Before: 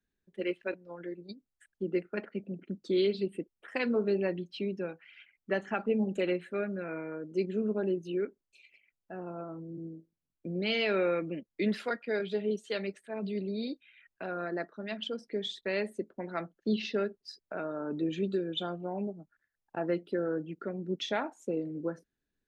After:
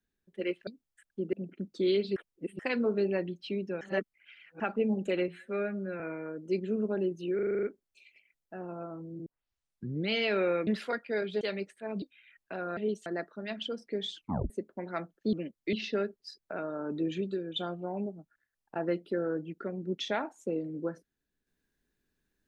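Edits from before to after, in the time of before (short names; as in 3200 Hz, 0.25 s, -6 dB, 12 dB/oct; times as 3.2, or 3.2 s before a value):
0.67–1.3 cut
1.96–2.43 cut
3.26–3.69 reverse
4.91–5.7 reverse
6.38–6.86 stretch 1.5×
8.21 stutter 0.04 s, 8 plays
9.84 tape start 0.84 s
11.25–11.65 move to 16.74
12.39–12.68 move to 14.47
13.29–13.72 cut
15.52 tape stop 0.39 s
18.22–18.57 gain -3 dB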